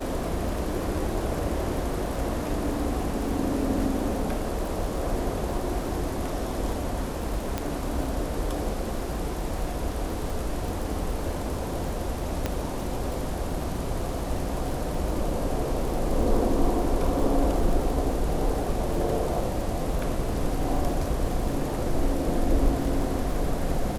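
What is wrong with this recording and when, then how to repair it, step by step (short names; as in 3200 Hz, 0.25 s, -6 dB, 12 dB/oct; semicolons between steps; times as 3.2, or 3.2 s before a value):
crackle 38/s -32 dBFS
7.58 pop -13 dBFS
12.46 pop -12 dBFS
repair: de-click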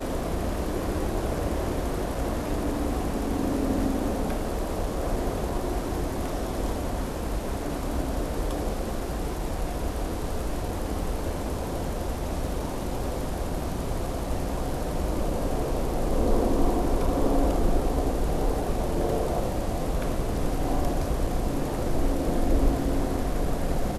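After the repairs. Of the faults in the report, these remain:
7.58 pop
12.46 pop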